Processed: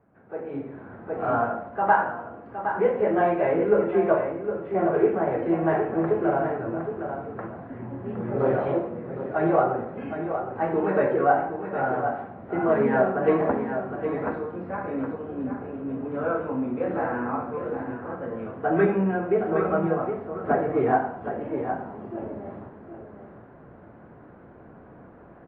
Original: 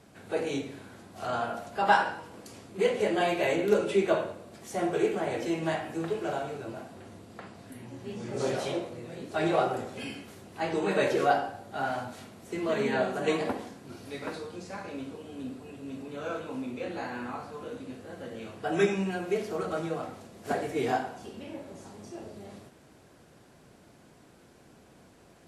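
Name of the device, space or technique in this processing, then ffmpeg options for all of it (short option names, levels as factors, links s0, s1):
action camera in a waterproof case: -af "lowpass=f=1600:w=0.5412,lowpass=f=1600:w=1.3066,lowpass=f=5200:w=0.5412,lowpass=f=5200:w=1.3066,bandreject=f=50:t=h:w=6,bandreject=f=100:t=h:w=6,bandreject=f=150:t=h:w=6,bandreject=f=200:t=h:w=6,bandreject=f=250:t=h:w=6,bandreject=f=300:t=h:w=6,bandreject=f=350:t=h:w=6,bandreject=f=400:t=h:w=6,aecho=1:1:764:0.376,dynaudnorm=f=460:g=3:m=5.62,volume=0.501" -ar 32000 -c:a aac -b:a 48k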